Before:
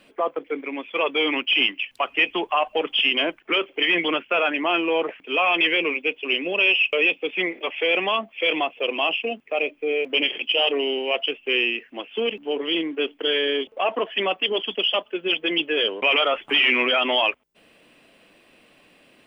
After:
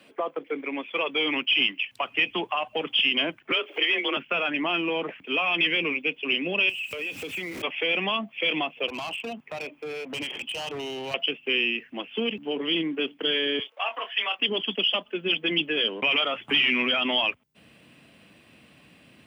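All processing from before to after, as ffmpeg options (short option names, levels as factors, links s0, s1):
-filter_complex "[0:a]asettb=1/sr,asplit=3[s0][s1][s2];[s0]atrim=end=3.514[s3];[s1]atrim=start=3.51:end=4.17,asetpts=PTS-STARTPTS,afade=t=in:d=0.004:c=qsin,afade=t=out:st=0.656:d=0.004:c=qsin,highpass=f=270:w=0.5412,highpass=f=270:w=1.3066,acompressor=mode=upward:threshold=0.0708:ratio=2.5:attack=3.2:release=140:knee=2.83:detection=peak,afreqshift=27[s4];[s2]atrim=start=4.166[s5];[s3][s4]acrossfade=d=0.004:c1=hsin:c2=qsin[s6];[s6][s5]acrossfade=d=0.004:c1=qsin:c2=hsin,asettb=1/sr,asplit=3[s7][s8][s9];[s7]atrim=end=6.694[s10];[s8]atrim=start=6.69:end=7.62,asetpts=PTS-STARTPTS,afade=t=in:d=0.004:c=qsin,afade=t=out:st=0.926:d=0.004:c=qsin,aeval=exprs='val(0)+0.5*0.0251*sgn(val(0))':c=same,acompressor=threshold=0.0316:ratio=5:attack=3.2:release=140:knee=1:detection=peak[s11];[s9]atrim=start=7.616[s12];[s10][s11]acrossfade=d=0.004:c1=hsin:c2=qsin[s13];[s13][s12]acrossfade=d=0.004:c1=qsin:c2=hsin,asettb=1/sr,asplit=3[s14][s15][s16];[s14]atrim=end=8.884[s17];[s15]atrim=start=8.88:end=11.14,asetpts=PTS-STARTPTS,afade=t=in:d=0.004:c=qsin,afade=t=out:st=2.256:d=0.004:c=qsin,equalizer=f=930:w=1.3:g=9.5,acompressor=threshold=0.0282:ratio=2.5:attack=3.2:release=140:knee=1:detection=peak,volume=25.1,asoftclip=hard,volume=0.0398[s18];[s16]atrim=start=11.136[s19];[s17][s18]acrossfade=d=0.004:c1=hsin:c2=qsin[s20];[s20][s19]acrossfade=d=0.004:c1=qsin:c2=hsin,asettb=1/sr,asplit=3[s21][s22][s23];[s21]atrim=end=13.594[s24];[s22]atrim=start=13.59:end=14.39,asetpts=PTS-STARTPTS,afade=t=in:d=0.004:c=qsin,afade=t=out:st=0.796:d=0.004:c=qsin,highpass=930,asplit=2[s25][s26];[s26]adelay=24,volume=0.422[s27];[s25][s27]amix=inputs=2:normalize=0,atrim=end_sample=35280,afreqshift=19[s28];[s23]atrim=start=14.386[s29];[s24][s28]acrossfade=d=0.004:c1=hsin:c2=qsin[s30];[s30][s29]acrossfade=d=0.004:c1=qsin:c2=hsin,highpass=f=79:w=0.5412,highpass=f=79:w=1.3066,asubboost=boost=5:cutoff=180,acrossover=split=240|3000[s31][s32][s33];[s32]acompressor=threshold=0.0447:ratio=3[s34];[s31][s34][s33]amix=inputs=3:normalize=0"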